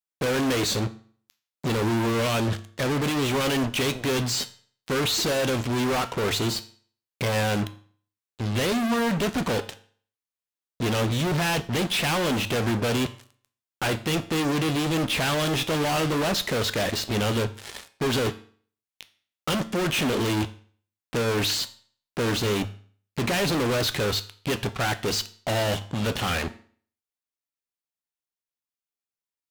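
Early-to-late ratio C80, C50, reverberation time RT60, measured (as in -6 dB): 20.0 dB, 16.0 dB, 0.50 s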